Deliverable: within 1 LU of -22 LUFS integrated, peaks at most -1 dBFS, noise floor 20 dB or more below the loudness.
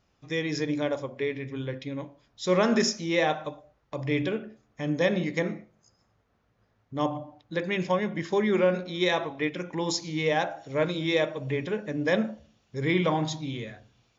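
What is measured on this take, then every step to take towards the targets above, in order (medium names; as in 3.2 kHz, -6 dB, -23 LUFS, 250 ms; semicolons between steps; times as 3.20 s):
loudness -28.0 LUFS; peak level -12.0 dBFS; loudness target -22.0 LUFS
-> trim +6 dB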